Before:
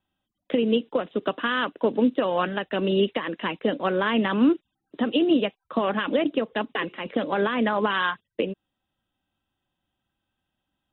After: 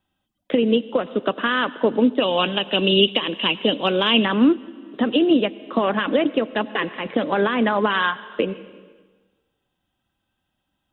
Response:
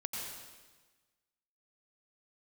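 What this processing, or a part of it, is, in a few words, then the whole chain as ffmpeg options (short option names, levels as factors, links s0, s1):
compressed reverb return: -filter_complex "[0:a]asettb=1/sr,asplit=3[s0][s1][s2];[s0]atrim=end=2.204[s3];[s1]atrim=start=2.2:end=4.25,asetpts=PTS-STARTPTS,afade=t=in:d=0.004:c=qsin,afade=t=out:st=2.046:d=0.004:c=qsin,highshelf=f=2300:t=q:w=3:g=6.5[s4];[s2]atrim=start=4.246[s5];[s3][s4]acrossfade=d=0.004:c1=hsin:c2=qsin[s6];[s6][s5]acrossfade=d=0.004:c1=qsin:c2=hsin,asplit=2[s7][s8];[1:a]atrim=start_sample=2205[s9];[s8][s9]afir=irnorm=-1:irlink=0,acompressor=threshold=0.0562:ratio=6,volume=0.266[s10];[s7][s10]amix=inputs=2:normalize=0,volume=1.41"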